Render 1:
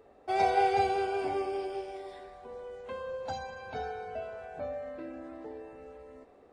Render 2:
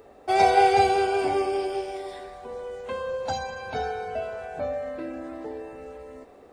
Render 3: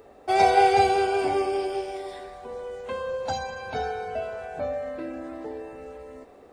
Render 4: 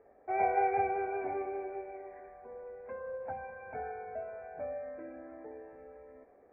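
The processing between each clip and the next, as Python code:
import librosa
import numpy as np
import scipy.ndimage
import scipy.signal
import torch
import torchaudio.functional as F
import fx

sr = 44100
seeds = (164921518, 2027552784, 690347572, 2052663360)

y1 = fx.high_shelf(x, sr, hz=5900.0, db=8.0)
y1 = y1 * 10.0 ** (7.5 / 20.0)
y2 = y1
y3 = scipy.signal.sosfilt(scipy.signal.cheby1(6, 6, 2400.0, 'lowpass', fs=sr, output='sos'), y2)
y3 = y3 * 10.0 ** (-9.0 / 20.0)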